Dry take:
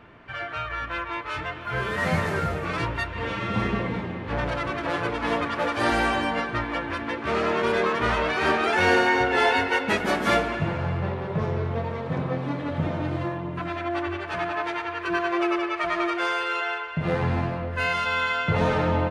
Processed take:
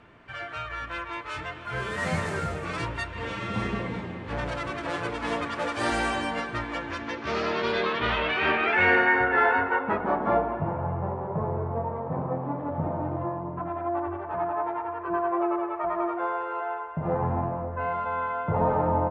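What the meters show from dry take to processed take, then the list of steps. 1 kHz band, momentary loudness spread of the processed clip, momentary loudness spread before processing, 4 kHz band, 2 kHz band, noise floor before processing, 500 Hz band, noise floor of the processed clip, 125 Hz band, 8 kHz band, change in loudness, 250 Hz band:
−1.0 dB, 11 LU, 9 LU, −5.0 dB, −2.0 dB, −34 dBFS, −2.0 dB, −38 dBFS, −4.0 dB, −3.5 dB, −2.5 dB, −3.5 dB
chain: low-pass filter sweep 8,500 Hz → 900 Hz, 0:06.61–0:10.28
level −4 dB

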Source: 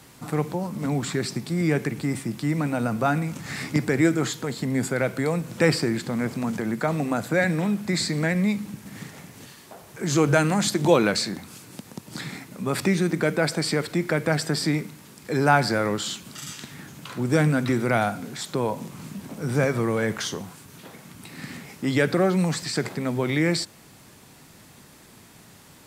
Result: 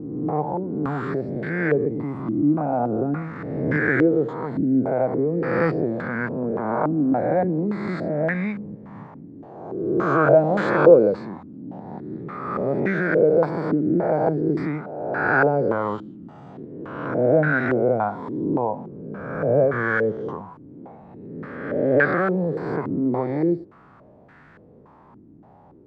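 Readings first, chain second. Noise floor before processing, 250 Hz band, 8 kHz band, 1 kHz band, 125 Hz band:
−50 dBFS, +1.5 dB, below −30 dB, +3.0 dB, −1.5 dB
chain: peak hold with a rise ahead of every peak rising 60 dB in 1.55 s
low-pass on a step sequencer 3.5 Hz 300–1,600 Hz
level −4.5 dB

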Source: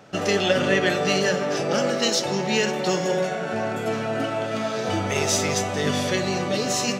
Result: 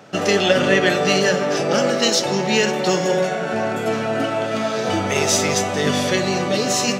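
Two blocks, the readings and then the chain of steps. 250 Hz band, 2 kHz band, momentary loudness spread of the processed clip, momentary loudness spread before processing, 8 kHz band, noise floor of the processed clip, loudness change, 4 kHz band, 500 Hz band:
+4.5 dB, +4.5 dB, 6 LU, 6 LU, +4.5 dB, −24 dBFS, +4.5 dB, +4.5 dB, +4.5 dB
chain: high-pass filter 110 Hz
level +4.5 dB

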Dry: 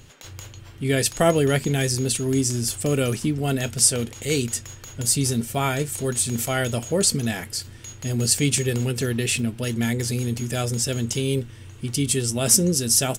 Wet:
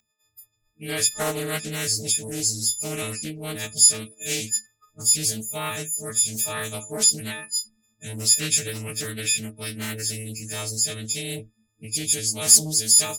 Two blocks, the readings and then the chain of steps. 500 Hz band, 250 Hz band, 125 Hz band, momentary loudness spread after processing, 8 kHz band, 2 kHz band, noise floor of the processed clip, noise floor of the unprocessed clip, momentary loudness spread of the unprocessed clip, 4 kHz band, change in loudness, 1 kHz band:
−9.0 dB, −10.5 dB, −11.0 dB, 15 LU, +3.0 dB, −3.0 dB, −72 dBFS, −43 dBFS, 12 LU, +2.0 dB, +0.5 dB, −6.0 dB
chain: every partial snapped to a pitch grid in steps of 6 semitones
noise reduction from a noise print of the clip's start 26 dB
highs frequency-modulated by the lows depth 0.37 ms
level −10 dB

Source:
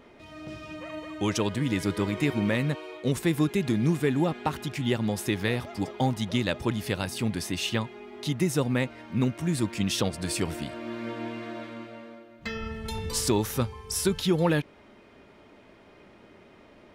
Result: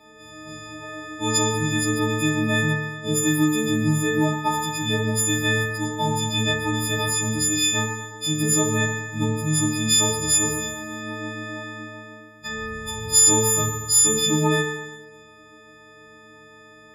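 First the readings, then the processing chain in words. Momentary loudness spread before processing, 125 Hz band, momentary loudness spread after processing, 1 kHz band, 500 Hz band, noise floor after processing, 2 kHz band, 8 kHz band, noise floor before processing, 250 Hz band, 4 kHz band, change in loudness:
13 LU, +4.0 dB, 16 LU, +7.0 dB, +3.0 dB, −48 dBFS, +9.5 dB, +17.5 dB, −54 dBFS, +3.0 dB, +10.0 dB, +7.5 dB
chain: every partial snapped to a pitch grid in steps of 6 semitones
feedback delay network reverb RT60 1.2 s, low-frequency decay 0.9×, high-frequency decay 1×, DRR −3 dB
level −5 dB

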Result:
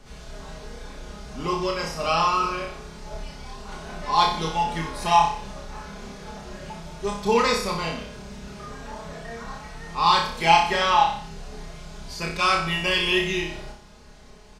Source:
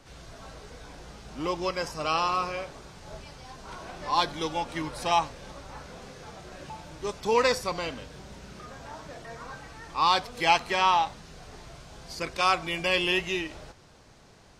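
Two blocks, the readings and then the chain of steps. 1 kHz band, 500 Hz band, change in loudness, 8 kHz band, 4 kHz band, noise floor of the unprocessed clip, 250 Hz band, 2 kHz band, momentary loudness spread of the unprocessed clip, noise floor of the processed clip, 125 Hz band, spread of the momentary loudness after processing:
+5.5 dB, +3.0 dB, +4.5 dB, +4.0 dB, +4.5 dB, −54 dBFS, +5.0 dB, +4.0 dB, 22 LU, −47 dBFS, +7.5 dB, 20 LU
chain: low-shelf EQ 130 Hz +8 dB
comb filter 4.8 ms, depth 69%
on a send: flutter between parallel walls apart 5.2 metres, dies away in 0.52 s

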